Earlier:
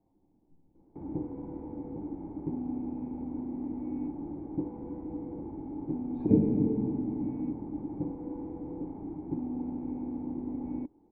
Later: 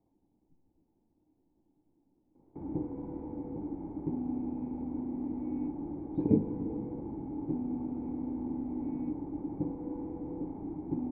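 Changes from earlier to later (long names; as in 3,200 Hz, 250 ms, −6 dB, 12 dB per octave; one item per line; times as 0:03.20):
speech: send −11.0 dB
background: entry +1.60 s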